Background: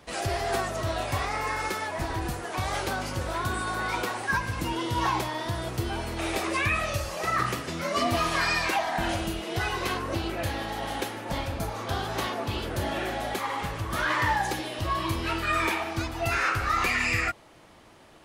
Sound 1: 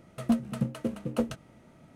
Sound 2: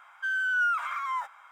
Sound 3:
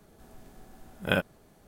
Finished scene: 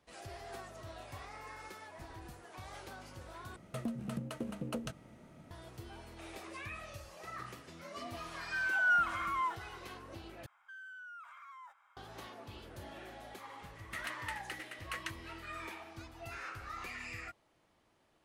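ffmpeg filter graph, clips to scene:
ffmpeg -i bed.wav -i cue0.wav -i cue1.wav -filter_complex "[1:a]asplit=2[link_01][link_02];[2:a]asplit=2[link_03][link_04];[0:a]volume=-19dB[link_05];[link_01]acompressor=threshold=-33dB:ratio=6:attack=3.2:release=140:knee=1:detection=peak[link_06];[link_03]aecho=1:1:2.8:0.55[link_07];[link_04]alimiter=level_in=7dB:limit=-24dB:level=0:latency=1:release=159,volume=-7dB[link_08];[link_02]highpass=frequency=1900:width_type=q:width=6.7[link_09];[link_05]asplit=3[link_10][link_11][link_12];[link_10]atrim=end=3.564[link_13];[link_06]atrim=end=1.95,asetpts=PTS-STARTPTS,volume=-1dB[link_14];[link_11]atrim=start=5.506:end=10.464[link_15];[link_08]atrim=end=1.51,asetpts=PTS-STARTPTS,volume=-15dB[link_16];[link_12]atrim=start=11.966[link_17];[link_07]atrim=end=1.51,asetpts=PTS-STARTPTS,volume=-6dB,afade=type=in:duration=0.004:curve=hsin,afade=type=out:start_time=1.506:duration=0.004:curve=hsin,adelay=8290[link_18];[link_09]atrim=end=1.95,asetpts=PTS-STARTPTS,volume=-2.5dB,afade=type=in:duration=0.004:curve=hsin,afade=type=out:start_time=1.946:duration=0.004:curve=hsin,adelay=13750[link_19];[link_13][link_14]acrossfade=duration=0.004:curve1=hsin:curve2=hsin[link_20];[link_20][link_15]acrossfade=duration=0.004:curve1=hsin:curve2=hsin[link_21];[link_21][link_16]acrossfade=duration=0.004:curve1=hsin:curve2=hsin[link_22];[link_22][link_17]acrossfade=duration=0.004:curve1=hsin:curve2=hsin[link_23];[link_23][link_18][link_19]amix=inputs=3:normalize=0" out.wav

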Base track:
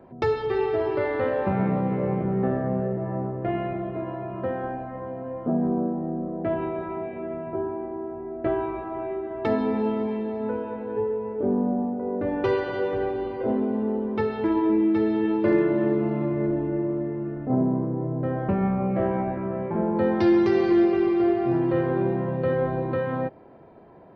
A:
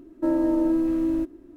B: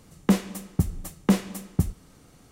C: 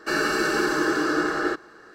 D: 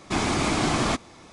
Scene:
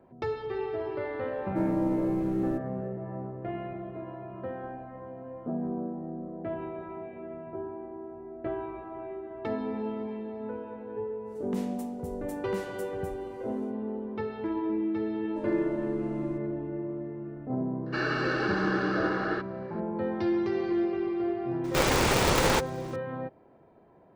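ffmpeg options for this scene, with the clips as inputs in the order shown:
ffmpeg -i bed.wav -i cue0.wav -i cue1.wav -i cue2.wav -i cue3.wav -filter_complex "[1:a]asplit=2[link_01][link_02];[0:a]volume=-8.5dB[link_03];[2:a]alimiter=limit=-18.5dB:level=0:latency=1:release=91[link_04];[link_02]aresample=22050,aresample=44100[link_05];[3:a]lowpass=frequency=4300:width=0.5412,lowpass=frequency=4300:width=1.3066[link_06];[4:a]aeval=exprs='val(0)*sgn(sin(2*PI*200*n/s))':channel_layout=same[link_07];[link_01]atrim=end=1.56,asetpts=PTS-STARTPTS,volume=-6.5dB,afade=type=in:duration=0.004:curve=hsin,afade=type=out:start_time=1.556:duration=0.004:curve=hsin,adelay=1330[link_08];[link_04]atrim=end=2.51,asetpts=PTS-STARTPTS,volume=-11dB,afade=type=in:duration=0.1,afade=type=out:start_time=2.41:duration=0.1,adelay=11240[link_09];[link_05]atrim=end=1.56,asetpts=PTS-STARTPTS,volume=-12.5dB,afade=type=in:duration=0.004:curve=hsin,afade=type=out:start_time=1.556:duration=0.004:curve=hsin,adelay=15130[link_10];[link_06]atrim=end=1.94,asetpts=PTS-STARTPTS,volume=-6dB,afade=type=in:duration=0.004:curve=hsin,afade=type=out:start_time=1.936:duration=0.004:curve=hsin,adelay=17860[link_11];[link_07]atrim=end=1.32,asetpts=PTS-STARTPTS,volume=-0.5dB,afade=type=in:duration=0.004:curve=hsin,afade=type=out:start_time=1.316:duration=0.004:curve=hsin,adelay=954324S[link_12];[link_03][link_08][link_09][link_10][link_11][link_12]amix=inputs=6:normalize=0" out.wav

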